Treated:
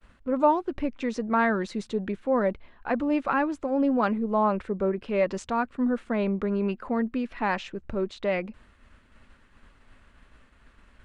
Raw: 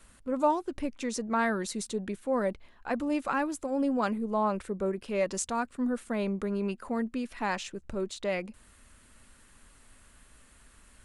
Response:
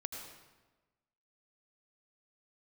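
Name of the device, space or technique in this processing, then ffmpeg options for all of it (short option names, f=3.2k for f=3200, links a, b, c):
hearing-loss simulation: -af "lowpass=3k,agate=range=-33dB:threshold=-54dB:ratio=3:detection=peak,volume=4.5dB"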